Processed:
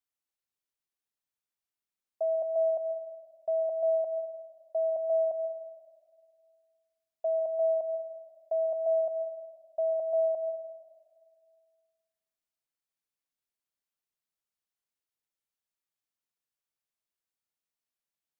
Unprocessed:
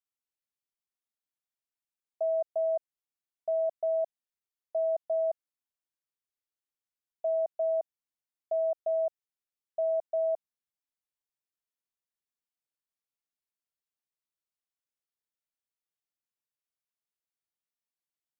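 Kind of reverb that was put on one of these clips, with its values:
comb and all-pass reverb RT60 1.9 s, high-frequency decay 0.8×, pre-delay 95 ms, DRR 10.5 dB

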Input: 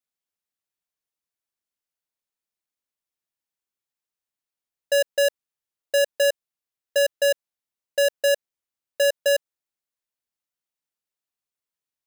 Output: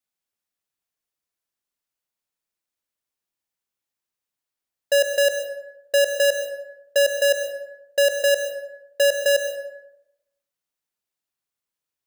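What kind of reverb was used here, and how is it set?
dense smooth reverb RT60 0.89 s, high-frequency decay 0.5×, pre-delay 95 ms, DRR 6 dB
level +2 dB

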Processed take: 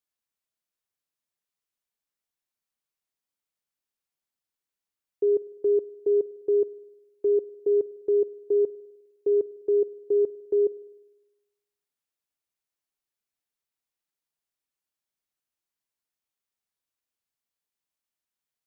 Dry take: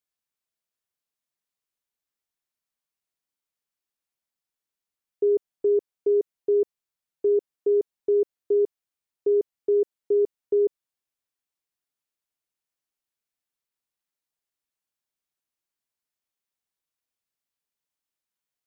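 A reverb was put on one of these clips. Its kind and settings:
spring reverb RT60 1.1 s, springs 51 ms, chirp 50 ms, DRR 19.5 dB
level −1.5 dB

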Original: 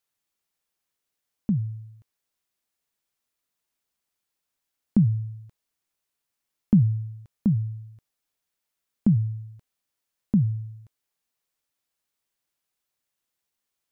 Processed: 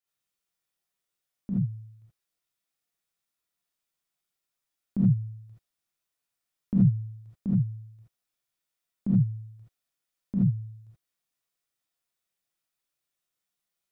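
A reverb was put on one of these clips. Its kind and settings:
reverb whose tail is shaped and stops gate 100 ms rising, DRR −7 dB
level −10.5 dB

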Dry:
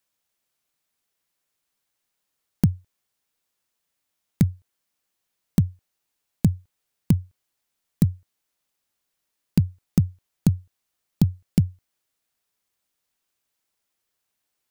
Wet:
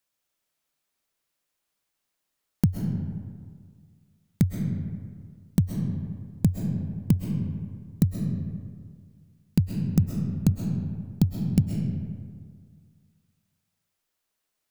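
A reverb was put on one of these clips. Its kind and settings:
comb and all-pass reverb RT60 1.9 s, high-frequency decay 0.5×, pre-delay 90 ms, DRR 2 dB
level −2.5 dB

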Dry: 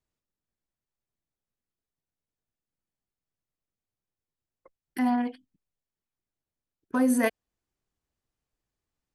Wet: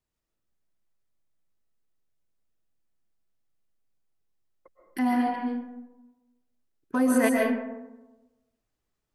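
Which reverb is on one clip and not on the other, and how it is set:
comb and all-pass reverb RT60 1.1 s, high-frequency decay 0.4×, pre-delay 95 ms, DRR −1 dB

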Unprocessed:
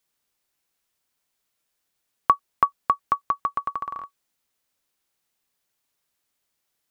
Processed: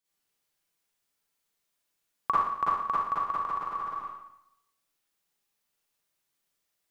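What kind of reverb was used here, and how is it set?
four-comb reverb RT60 0.8 s, DRR −8.5 dB
level −11.5 dB

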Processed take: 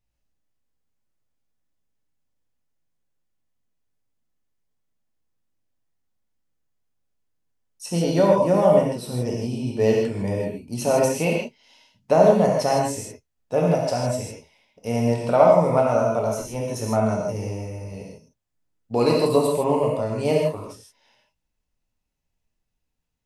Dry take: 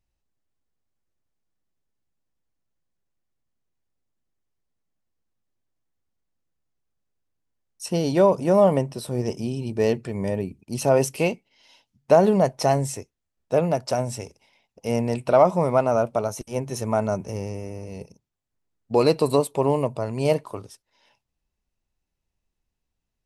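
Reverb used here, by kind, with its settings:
reverb whose tail is shaped and stops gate 180 ms flat, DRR −2.5 dB
level −3 dB

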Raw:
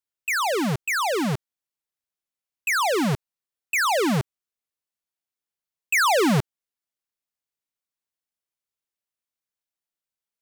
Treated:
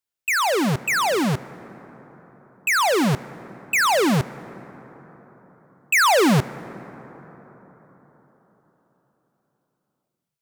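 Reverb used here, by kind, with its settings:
dense smooth reverb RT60 4.7 s, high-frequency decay 0.35×, DRR 17 dB
level +3 dB

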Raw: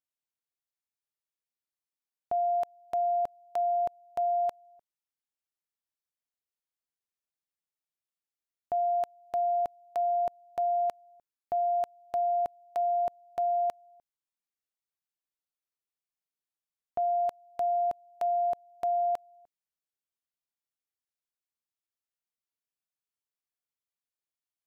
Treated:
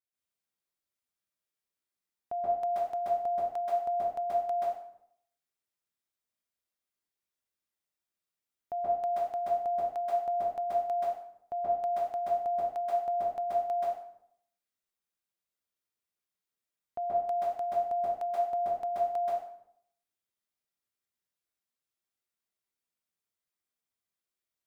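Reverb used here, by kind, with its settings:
dense smooth reverb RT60 0.65 s, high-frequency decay 0.8×, pre-delay 120 ms, DRR −8.5 dB
level −6 dB

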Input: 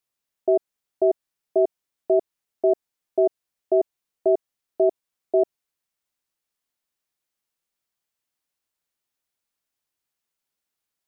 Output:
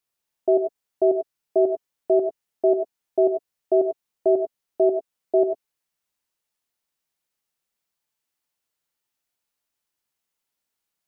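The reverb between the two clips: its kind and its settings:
reverb whose tail is shaped and stops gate 120 ms rising, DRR 4 dB

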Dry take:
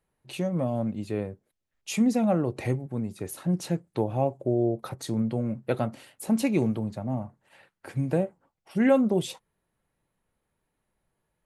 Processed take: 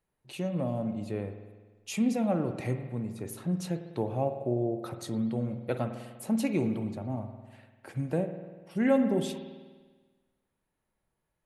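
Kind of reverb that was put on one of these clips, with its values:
spring reverb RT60 1.4 s, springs 49 ms, chirp 75 ms, DRR 7.5 dB
level −4.5 dB

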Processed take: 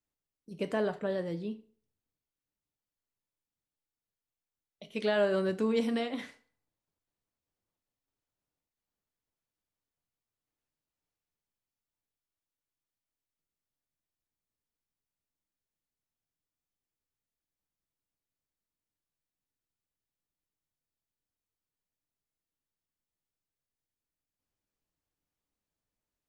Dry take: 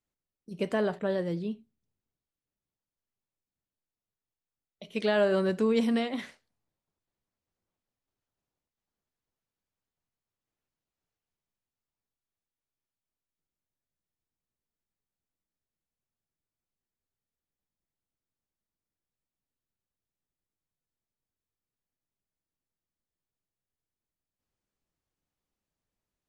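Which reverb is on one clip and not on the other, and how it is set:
feedback delay network reverb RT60 0.5 s, low-frequency decay 0.8×, high-frequency decay 0.8×, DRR 10.5 dB
level −3 dB

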